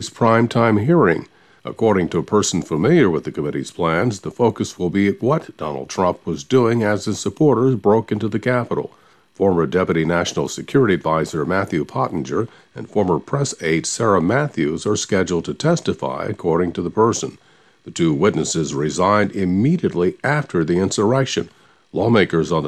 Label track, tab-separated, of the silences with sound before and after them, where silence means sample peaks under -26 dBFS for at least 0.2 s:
1.230000	1.660000	silence
8.860000	9.400000	silence
12.460000	12.760000	silence
17.290000	17.880000	silence
21.430000	21.950000	silence